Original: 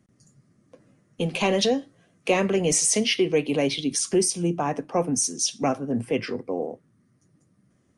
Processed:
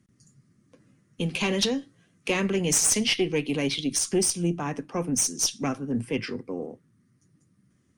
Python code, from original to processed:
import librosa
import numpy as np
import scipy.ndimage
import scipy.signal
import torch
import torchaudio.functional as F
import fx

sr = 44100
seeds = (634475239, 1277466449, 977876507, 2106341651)

y = fx.peak_eq(x, sr, hz=650.0, db=-10.0, octaves=1.2)
y = fx.cheby_harmonics(y, sr, harmonics=(2,), levels_db=(-11,), full_scale_db=-9.0)